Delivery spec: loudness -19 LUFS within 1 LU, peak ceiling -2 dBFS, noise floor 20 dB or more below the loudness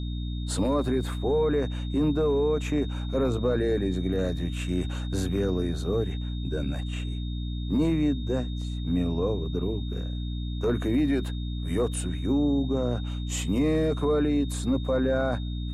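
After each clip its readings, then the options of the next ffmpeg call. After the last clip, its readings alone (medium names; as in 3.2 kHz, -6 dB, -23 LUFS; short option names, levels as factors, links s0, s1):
hum 60 Hz; highest harmonic 300 Hz; hum level -29 dBFS; steady tone 3.7 kHz; tone level -45 dBFS; loudness -27.5 LUFS; peak level -15.5 dBFS; loudness target -19.0 LUFS
-> -af "bandreject=f=60:t=h:w=4,bandreject=f=120:t=h:w=4,bandreject=f=180:t=h:w=4,bandreject=f=240:t=h:w=4,bandreject=f=300:t=h:w=4"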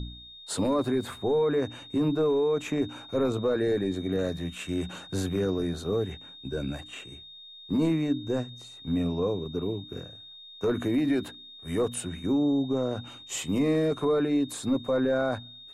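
hum not found; steady tone 3.7 kHz; tone level -45 dBFS
-> -af "bandreject=f=3700:w=30"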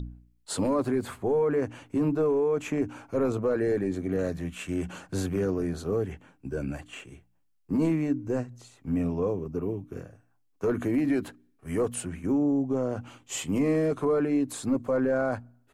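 steady tone not found; loudness -28.5 LUFS; peak level -16.5 dBFS; loudness target -19.0 LUFS
-> -af "volume=2.99"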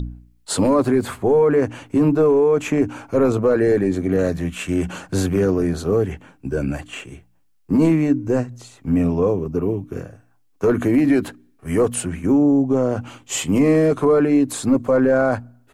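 loudness -19.0 LUFS; peak level -7.0 dBFS; noise floor -58 dBFS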